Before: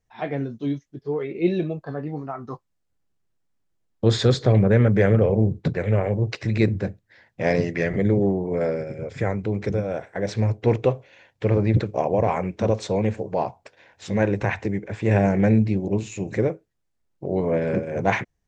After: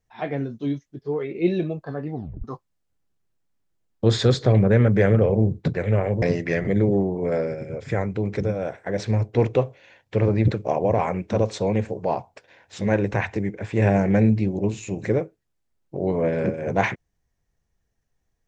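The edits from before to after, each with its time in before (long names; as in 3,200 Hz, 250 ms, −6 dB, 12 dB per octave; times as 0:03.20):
0:02.14: tape stop 0.30 s
0:06.22–0:07.51: remove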